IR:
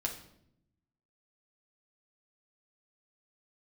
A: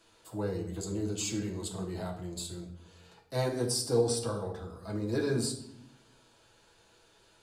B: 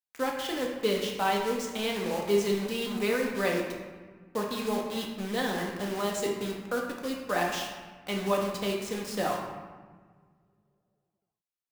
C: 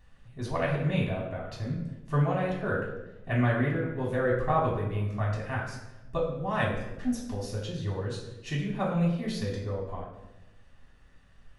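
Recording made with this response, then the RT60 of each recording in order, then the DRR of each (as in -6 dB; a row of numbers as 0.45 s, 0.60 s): A; 0.75 s, 1.5 s, 1.0 s; -1.0 dB, -1.0 dB, -5.0 dB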